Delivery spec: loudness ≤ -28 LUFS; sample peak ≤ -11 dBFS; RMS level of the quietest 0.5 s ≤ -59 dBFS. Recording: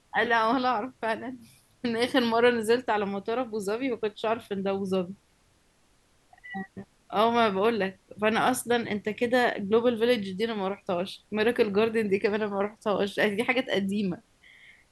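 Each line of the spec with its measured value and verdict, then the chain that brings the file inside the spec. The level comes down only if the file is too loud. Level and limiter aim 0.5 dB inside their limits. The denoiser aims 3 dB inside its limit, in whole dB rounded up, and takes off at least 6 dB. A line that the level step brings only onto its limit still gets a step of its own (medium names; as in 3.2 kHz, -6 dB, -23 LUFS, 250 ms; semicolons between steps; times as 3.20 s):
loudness -27.0 LUFS: fail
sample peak -9.5 dBFS: fail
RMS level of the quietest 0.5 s -65 dBFS: pass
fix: trim -1.5 dB; peak limiter -11.5 dBFS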